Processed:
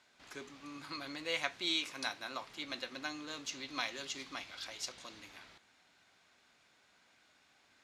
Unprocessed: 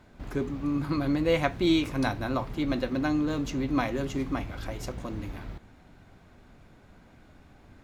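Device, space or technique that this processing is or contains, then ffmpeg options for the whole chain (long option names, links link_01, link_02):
piezo pickup straight into a mixer: -filter_complex "[0:a]asettb=1/sr,asplit=3[link_01][link_02][link_03];[link_01]atrim=end=1.684[link_04];[link_02]atrim=start=1.68:end=2.44,asetpts=PTS-STARTPTS,afade=type=in:duration=0.004:curve=qsin,afade=type=out:start_time=0.756:duration=0.004:curve=qsin,highpass=130[link_05];[link_03]atrim=start=2.436[link_06];[link_04][link_05]acrossfade=duration=0.004:curve1=hsin:curve2=qsin[link_07];[link_07][link_06]acrossfade=duration=0.004:curve1=qsin:curve2=hsin,lowpass=5600,aderivative,asettb=1/sr,asplit=3[link_08][link_09][link_10];[link_08]atrim=end=3.524[link_11];[link_09]atrim=start=3.52:end=5.2,asetpts=PTS-STARTPTS,afade=type=in:duration=0.004:curve=qsin,afade=type=out:start_time=1.676:duration=0.004:curve=qsin,equalizer=frequency=4100:width_type=o:width=0.95:gain=5.5[link_12];[link_10]atrim=start=5.196[link_13];[link_11][link_12]acrossfade=duration=0.004:curve1=hsin:curve2=qsin[link_14];[link_14][link_13]acrossfade=duration=0.004:curve1=qsin:curve2=hsin,volume=6.5dB"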